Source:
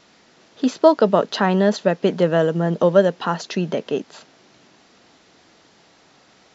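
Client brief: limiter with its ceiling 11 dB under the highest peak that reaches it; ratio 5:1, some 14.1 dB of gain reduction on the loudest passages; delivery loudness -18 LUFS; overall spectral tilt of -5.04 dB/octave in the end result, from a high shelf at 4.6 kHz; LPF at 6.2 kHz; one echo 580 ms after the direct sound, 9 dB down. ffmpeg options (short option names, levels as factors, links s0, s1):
-af "lowpass=6200,highshelf=f=4600:g=-3.5,acompressor=threshold=0.0631:ratio=5,alimiter=limit=0.0794:level=0:latency=1,aecho=1:1:580:0.355,volume=5.31"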